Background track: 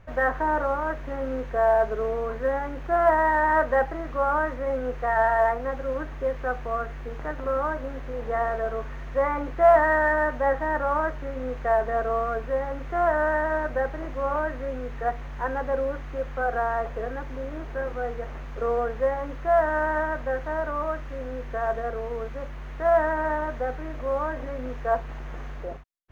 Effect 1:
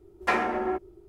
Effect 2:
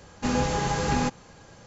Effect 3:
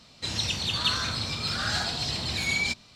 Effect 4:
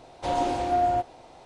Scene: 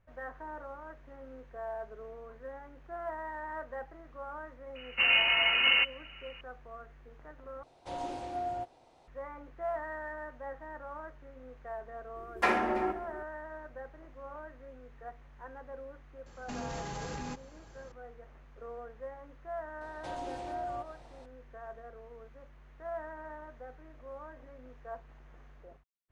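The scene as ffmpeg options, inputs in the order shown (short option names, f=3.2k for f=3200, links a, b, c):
-filter_complex "[2:a]asplit=2[a][b];[4:a]asplit=2[c][d];[0:a]volume=-19dB[e];[a]lowpass=f=2.6k:t=q:w=0.5098,lowpass=f=2.6k:t=q:w=0.6013,lowpass=f=2.6k:t=q:w=0.9,lowpass=f=2.6k:t=q:w=2.563,afreqshift=-3000[f];[1:a]aecho=1:1:63|328:0.299|0.133[g];[b]acompressor=threshold=-28dB:ratio=6:attack=3.8:release=41:knee=1:detection=rms[h];[d]acompressor=threshold=-33dB:ratio=2:attack=0.23:release=127:knee=1:detection=peak[i];[e]asplit=2[j][k];[j]atrim=end=7.634[l];[c]atrim=end=1.45,asetpts=PTS-STARTPTS,volume=-12.5dB[m];[k]atrim=start=9.076[n];[f]atrim=end=1.66,asetpts=PTS-STARTPTS,volume=-0.5dB,afade=t=in:d=0.004:c=hsin,afade=t=out:st=1.656:d=0.004:c=hsin,adelay=4750[o];[g]atrim=end=1.08,asetpts=PTS-STARTPTS,volume=-2.5dB,afade=t=in:d=0.004:c=hsin,afade=t=out:st=1.076:d=0.004:c=hsin,adelay=12150[p];[h]atrim=end=1.66,asetpts=PTS-STARTPTS,volume=-8.5dB,afade=t=in:d=0.004:c=hsin,afade=t=out:st=1.656:d=0.004:c=hsin,adelay=16260[q];[i]atrim=end=1.45,asetpts=PTS-STARTPTS,volume=-7dB,afade=t=in:d=0.004:c=hsin,afade=t=out:st=1.446:d=0.004:c=hsin,adelay=19810[r];[l][m]acrossfade=d=0.004:c1=hsin:c2=hsin[s];[s][n]acrossfade=d=0.004:c1=hsin:c2=hsin[t];[t][o][p][q][r]amix=inputs=5:normalize=0"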